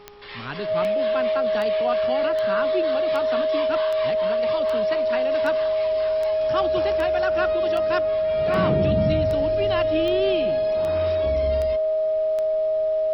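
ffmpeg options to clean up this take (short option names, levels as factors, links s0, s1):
-af "adeclick=t=4,bandreject=f=411.3:t=h:w=4,bandreject=f=822.6:t=h:w=4,bandreject=f=1233.9:t=h:w=4,bandreject=f=630:w=30,agate=range=0.0891:threshold=0.2"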